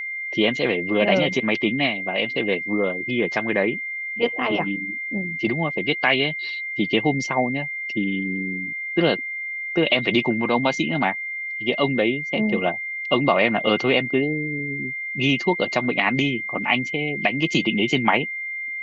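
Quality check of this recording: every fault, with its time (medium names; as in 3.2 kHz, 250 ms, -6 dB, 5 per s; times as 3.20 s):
whine 2.1 kHz -27 dBFS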